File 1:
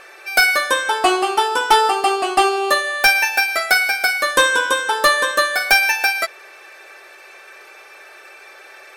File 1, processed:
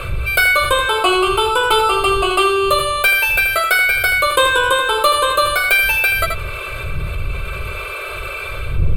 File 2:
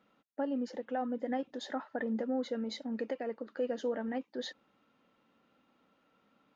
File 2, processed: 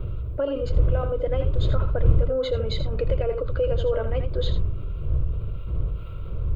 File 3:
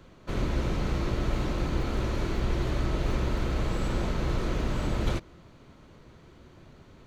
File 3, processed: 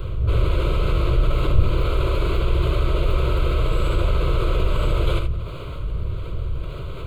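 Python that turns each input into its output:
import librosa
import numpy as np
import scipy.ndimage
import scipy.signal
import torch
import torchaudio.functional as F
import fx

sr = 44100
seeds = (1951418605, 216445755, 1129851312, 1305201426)

p1 = fx.dmg_wind(x, sr, seeds[0], corner_hz=87.0, level_db=-30.0)
p2 = fx.fixed_phaser(p1, sr, hz=1200.0, stages=8)
p3 = p2 + fx.echo_single(p2, sr, ms=81, db=-9.5, dry=0)
p4 = fx.env_flatten(p3, sr, amount_pct=50)
y = F.gain(torch.from_numpy(p4), 1.5).numpy()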